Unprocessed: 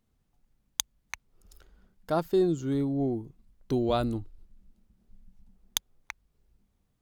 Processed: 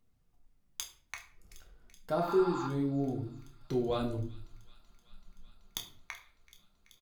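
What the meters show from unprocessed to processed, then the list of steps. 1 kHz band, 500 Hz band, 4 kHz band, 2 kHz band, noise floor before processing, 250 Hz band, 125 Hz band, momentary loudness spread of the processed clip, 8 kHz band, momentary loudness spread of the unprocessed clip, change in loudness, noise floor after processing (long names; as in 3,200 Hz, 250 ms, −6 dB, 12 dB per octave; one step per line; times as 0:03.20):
−2.0 dB, −3.5 dB, −7.5 dB, −3.5 dB, −75 dBFS, −4.5 dB, −3.5 dB, 19 LU, −9.5 dB, 20 LU, −4.5 dB, −71 dBFS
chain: healed spectral selection 0:02.24–0:02.64, 740–5,600 Hz before
in parallel at 0 dB: downward compressor, threshold −35 dBFS, peak gain reduction 14 dB
on the sum: hard clipping −13 dBFS, distortion −22 dB
flanger 0.68 Hz, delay 0 ms, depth 5.9 ms, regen −40%
double-tracking delay 29 ms −10.5 dB
on a send: delay with a high-pass on its return 381 ms, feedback 82%, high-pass 2,200 Hz, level −18.5 dB
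on the sum: rectangular room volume 52 cubic metres, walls mixed, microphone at 0.47 metres
level −6 dB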